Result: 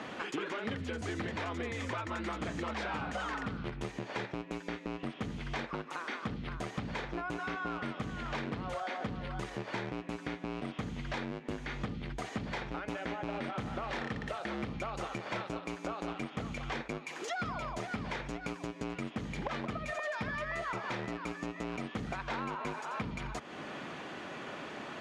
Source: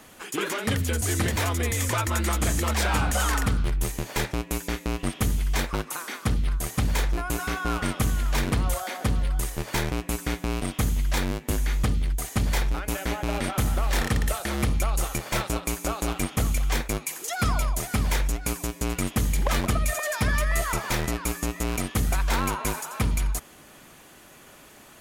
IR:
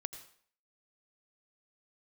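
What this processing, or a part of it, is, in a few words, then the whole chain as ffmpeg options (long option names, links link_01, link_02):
AM radio: -af "highpass=150,lowpass=4400,acompressor=threshold=-44dB:ratio=6,asoftclip=type=tanh:threshold=-33.5dB,aemphasis=mode=reproduction:type=50fm,volume=9dB"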